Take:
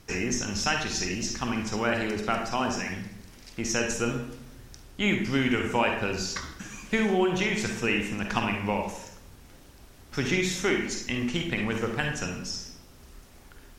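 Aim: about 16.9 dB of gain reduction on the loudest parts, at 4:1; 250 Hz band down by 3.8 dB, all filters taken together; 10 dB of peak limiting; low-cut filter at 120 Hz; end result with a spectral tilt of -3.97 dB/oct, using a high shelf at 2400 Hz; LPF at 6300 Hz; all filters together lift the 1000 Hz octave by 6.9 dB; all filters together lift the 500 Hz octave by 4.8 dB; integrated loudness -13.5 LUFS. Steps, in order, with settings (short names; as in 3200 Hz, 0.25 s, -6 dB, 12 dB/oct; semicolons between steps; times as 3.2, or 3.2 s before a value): HPF 120 Hz; LPF 6300 Hz; bell 250 Hz -8 dB; bell 500 Hz +7.5 dB; bell 1000 Hz +8 dB; high shelf 2400 Hz -6.5 dB; compressor 4:1, threshold -35 dBFS; gain +26.5 dB; limiter -2 dBFS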